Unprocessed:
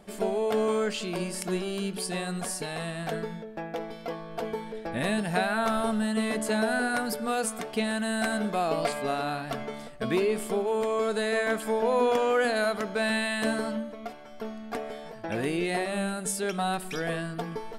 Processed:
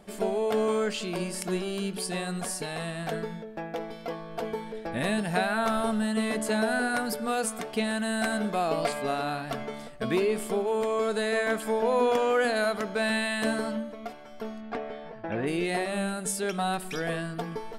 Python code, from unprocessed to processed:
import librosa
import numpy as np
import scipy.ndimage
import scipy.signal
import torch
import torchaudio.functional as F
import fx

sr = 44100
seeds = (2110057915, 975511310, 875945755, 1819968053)

y = fx.lowpass(x, sr, hz=fx.line((14.6, 3900.0), (15.46, 2200.0)), slope=12, at=(14.6, 15.46), fade=0.02)